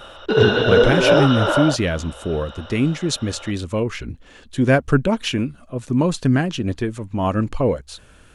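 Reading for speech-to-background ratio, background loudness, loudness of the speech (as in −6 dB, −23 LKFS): −4.5 dB, −17.0 LKFS, −21.5 LKFS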